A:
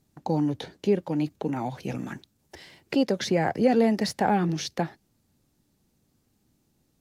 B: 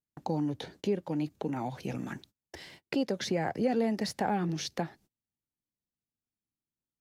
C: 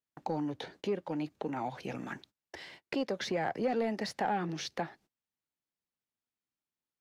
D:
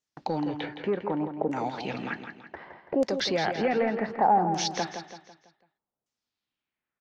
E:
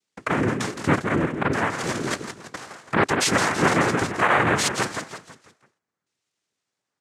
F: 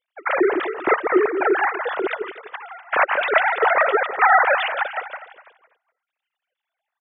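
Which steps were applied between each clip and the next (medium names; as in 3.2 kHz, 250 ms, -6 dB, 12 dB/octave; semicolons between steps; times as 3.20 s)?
gate -52 dBFS, range -29 dB; compression 1.5:1, threshold -38 dBFS, peak gain reduction 8 dB
overdrive pedal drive 12 dB, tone 2.5 kHz, clips at -17 dBFS; trim -3.5 dB
LFO low-pass saw down 0.66 Hz 610–6800 Hz; feedback delay 166 ms, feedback 43%, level -8.5 dB; trim +4.5 dB
peak limiter -19.5 dBFS, peak gain reduction 7.5 dB; noise-vocoded speech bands 3; trim +7.5 dB
formants replaced by sine waves; delay 247 ms -14.5 dB; trim +3 dB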